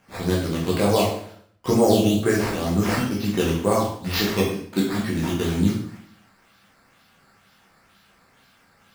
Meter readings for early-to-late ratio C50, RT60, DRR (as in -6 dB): 3.5 dB, 0.60 s, -5.0 dB